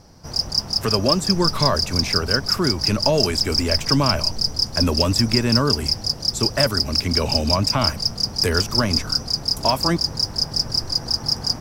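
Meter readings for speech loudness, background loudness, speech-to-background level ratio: −23.0 LKFS, −21.0 LKFS, −2.0 dB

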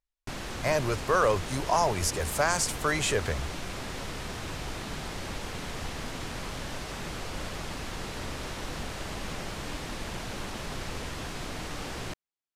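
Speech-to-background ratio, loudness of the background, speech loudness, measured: 9.5 dB, −37.0 LKFS, −27.5 LKFS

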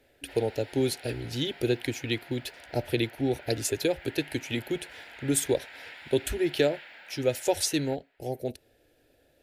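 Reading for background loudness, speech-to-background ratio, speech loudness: −46.5 LKFS, 16.5 dB, −30.0 LKFS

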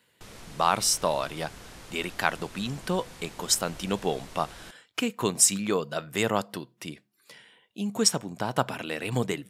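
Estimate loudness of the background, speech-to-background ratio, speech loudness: −46.5 LKFS, 19.0 dB, −27.5 LKFS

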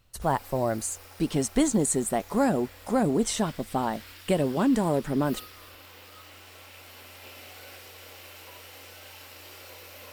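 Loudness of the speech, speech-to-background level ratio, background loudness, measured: −27.0 LKFS, 19.0 dB, −46.0 LKFS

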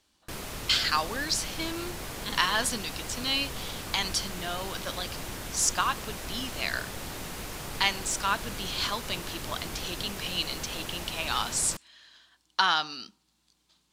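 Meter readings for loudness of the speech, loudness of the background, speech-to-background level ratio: −30.0 LKFS, −37.5 LKFS, 7.5 dB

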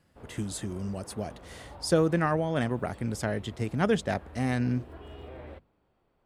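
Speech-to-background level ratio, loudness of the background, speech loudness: 19.0 dB, −49.0 LKFS, −30.0 LKFS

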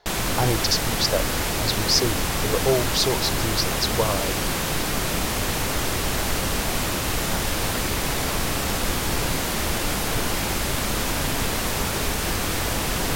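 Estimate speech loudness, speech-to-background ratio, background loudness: −24.5 LKFS, −0.5 dB, −24.0 LKFS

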